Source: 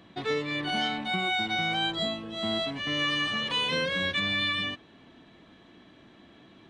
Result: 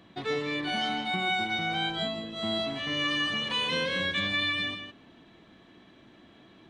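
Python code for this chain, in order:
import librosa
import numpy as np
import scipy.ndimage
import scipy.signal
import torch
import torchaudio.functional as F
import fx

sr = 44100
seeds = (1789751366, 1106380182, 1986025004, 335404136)

y = fx.high_shelf(x, sr, hz=4800.0, db=-4.5, at=(1.44, 2.36))
y = y + 10.0 ** (-8.0 / 20.0) * np.pad(y, (int(159 * sr / 1000.0), 0))[:len(y)]
y = y * 10.0 ** (-1.5 / 20.0)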